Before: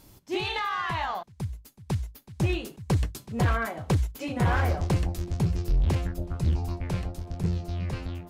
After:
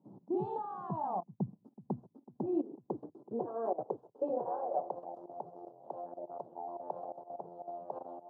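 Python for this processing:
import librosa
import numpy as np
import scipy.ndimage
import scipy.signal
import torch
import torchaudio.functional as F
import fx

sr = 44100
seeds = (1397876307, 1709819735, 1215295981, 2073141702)

y = fx.level_steps(x, sr, step_db=18)
y = scipy.signal.sosfilt(scipy.signal.ellip(3, 1.0, 40, [120.0, 870.0], 'bandpass', fs=sr, output='sos'), y)
y = fx.filter_sweep_highpass(y, sr, from_hz=190.0, to_hz=650.0, start_s=1.41, end_s=5.12, q=2.5)
y = y * librosa.db_to_amplitude(3.0)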